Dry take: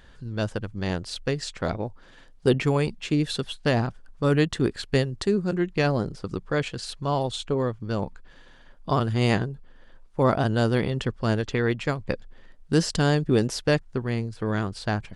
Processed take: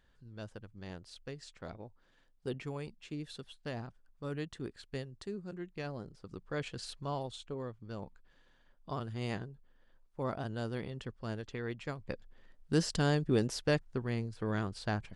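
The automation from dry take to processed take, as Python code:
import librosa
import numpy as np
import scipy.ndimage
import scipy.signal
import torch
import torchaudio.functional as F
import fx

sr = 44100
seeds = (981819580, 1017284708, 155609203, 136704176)

y = fx.gain(x, sr, db=fx.line((6.17, -18.0), (6.81, -8.5), (7.43, -15.5), (11.6, -15.5), (12.78, -8.0)))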